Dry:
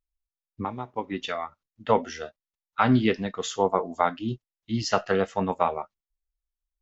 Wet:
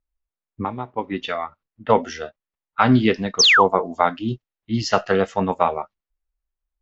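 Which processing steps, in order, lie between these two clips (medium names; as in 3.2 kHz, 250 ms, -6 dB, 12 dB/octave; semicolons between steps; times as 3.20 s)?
level-controlled noise filter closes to 1.8 kHz, open at -20 dBFS; painted sound fall, 3.39–3.64 s, 780–6600 Hz -18 dBFS; trim +5 dB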